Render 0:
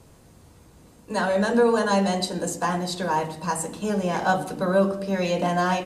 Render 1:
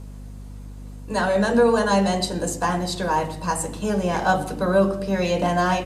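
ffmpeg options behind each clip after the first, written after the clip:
-af "aeval=exprs='val(0)+0.0126*(sin(2*PI*50*n/s)+sin(2*PI*2*50*n/s)/2+sin(2*PI*3*50*n/s)/3+sin(2*PI*4*50*n/s)/4+sin(2*PI*5*50*n/s)/5)':c=same,volume=2dB"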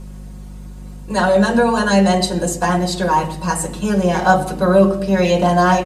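-af "aecho=1:1:5.5:0.65,volume=3.5dB"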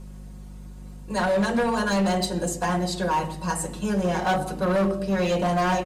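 -af "asoftclip=type=hard:threshold=-11.5dB,volume=-7dB"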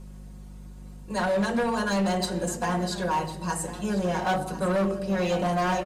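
-af "aecho=1:1:1050:0.2,volume=-2.5dB"

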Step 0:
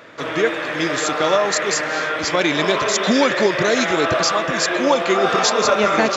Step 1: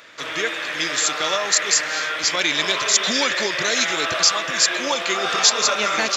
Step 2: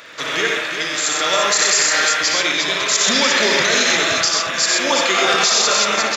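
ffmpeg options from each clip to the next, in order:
-af "tiltshelf=f=1.5k:g=-9,volume=-2.5dB"
-filter_complex "[0:a]tremolo=f=0.57:d=0.57,asplit=2[a][b];[b]aecho=0:1:59|92|126|179|351:0.473|0.531|0.501|0.133|0.422[c];[a][c]amix=inputs=2:normalize=0,alimiter=level_in=10dB:limit=-1dB:release=50:level=0:latency=1,volume=-4.5dB"

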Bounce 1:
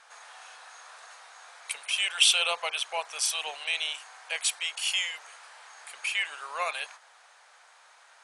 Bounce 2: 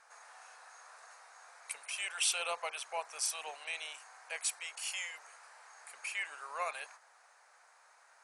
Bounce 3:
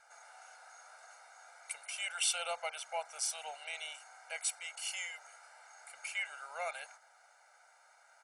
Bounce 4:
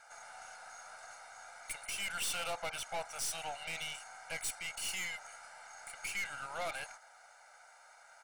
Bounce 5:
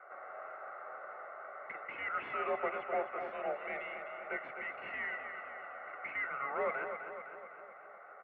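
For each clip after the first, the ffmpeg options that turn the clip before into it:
-af "equalizer=f=3.3k:w=2.1:g=-11,volume=-5.5dB"
-af "aecho=1:1:1.4:0.91,volume=-3.5dB"
-af "aeval=exprs='(tanh(112*val(0)+0.45)-tanh(0.45))/112':c=same,volume=6.5dB"
-filter_complex "[0:a]asplit=2[a][b];[b]aecho=0:1:255|510|765|1020|1275|1530|1785:0.398|0.235|0.139|0.0818|0.0482|0.0285|0.0168[c];[a][c]amix=inputs=2:normalize=0,highpass=f=290:t=q:w=0.5412,highpass=f=290:t=q:w=1.307,lowpass=f=2.1k:t=q:w=0.5176,lowpass=f=2.1k:t=q:w=0.7071,lowpass=f=2.1k:t=q:w=1.932,afreqshift=-120,volume=5dB"

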